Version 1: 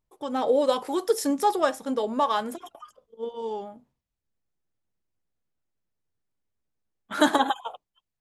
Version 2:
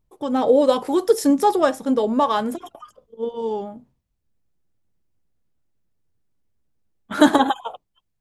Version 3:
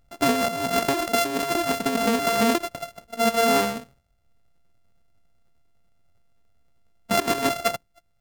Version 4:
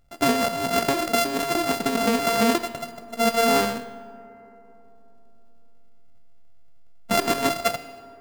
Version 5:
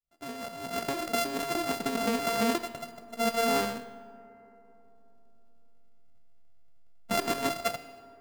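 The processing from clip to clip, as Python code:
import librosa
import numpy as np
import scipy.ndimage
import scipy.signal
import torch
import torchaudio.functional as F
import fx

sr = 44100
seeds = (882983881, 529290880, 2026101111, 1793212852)

y1 = fx.low_shelf(x, sr, hz=410.0, db=9.5)
y1 = y1 * librosa.db_to_amplitude(2.5)
y2 = np.r_[np.sort(y1[:len(y1) // 64 * 64].reshape(-1, 64), axis=1).ravel(), y1[len(y1) // 64 * 64:]]
y2 = fx.over_compress(y2, sr, threshold_db=-25.0, ratio=-1.0)
y2 = y2 * librosa.db_to_amplitude(2.0)
y3 = fx.comb_fb(y2, sr, f0_hz=79.0, decay_s=1.0, harmonics='all', damping=0.0, mix_pct=60)
y3 = fx.rev_freeverb(y3, sr, rt60_s=3.7, hf_ratio=0.35, predelay_ms=90, drr_db=20.0)
y3 = y3 * librosa.db_to_amplitude(7.5)
y4 = fx.fade_in_head(y3, sr, length_s=1.21)
y4 = y4 * librosa.db_to_amplitude(-7.0)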